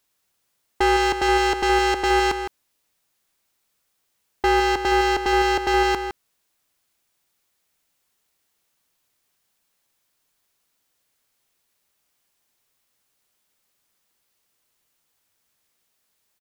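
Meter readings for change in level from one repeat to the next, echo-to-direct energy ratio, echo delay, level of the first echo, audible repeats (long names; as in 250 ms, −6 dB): repeats not evenly spaced, −10.5 dB, 161 ms, −10.5 dB, 1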